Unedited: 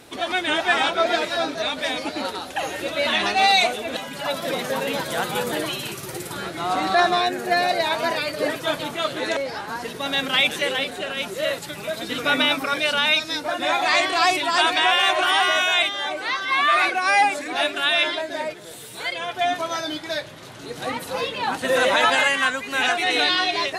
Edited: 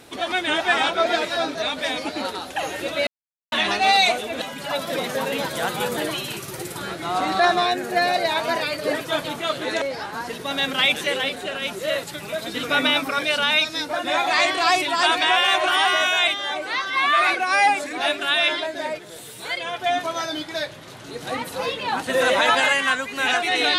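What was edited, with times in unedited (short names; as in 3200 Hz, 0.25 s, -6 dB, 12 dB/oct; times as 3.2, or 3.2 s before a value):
3.07 insert silence 0.45 s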